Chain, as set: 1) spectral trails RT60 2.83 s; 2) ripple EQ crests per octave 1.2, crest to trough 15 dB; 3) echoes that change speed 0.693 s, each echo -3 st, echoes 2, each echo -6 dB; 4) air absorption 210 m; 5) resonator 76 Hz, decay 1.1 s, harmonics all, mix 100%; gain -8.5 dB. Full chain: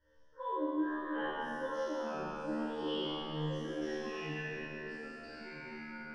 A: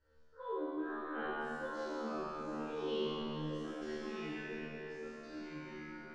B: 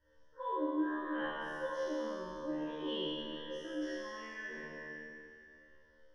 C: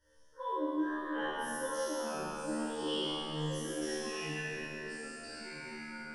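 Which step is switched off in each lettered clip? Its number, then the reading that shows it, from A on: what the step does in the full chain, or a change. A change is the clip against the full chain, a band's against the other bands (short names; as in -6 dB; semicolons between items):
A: 2, loudness change -3.0 LU; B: 3, 125 Hz band -12.0 dB; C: 4, 4 kHz band +4.0 dB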